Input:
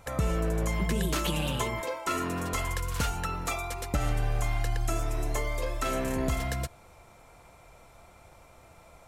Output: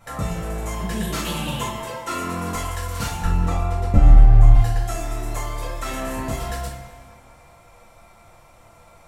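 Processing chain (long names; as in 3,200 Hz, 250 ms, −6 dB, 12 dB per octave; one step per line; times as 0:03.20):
0:03.24–0:04.54: spectral tilt −3.5 dB per octave
bucket-brigade delay 196 ms, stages 4,096, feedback 50%, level −14 dB
convolution reverb, pre-delay 3 ms, DRR −8 dB
level −4.5 dB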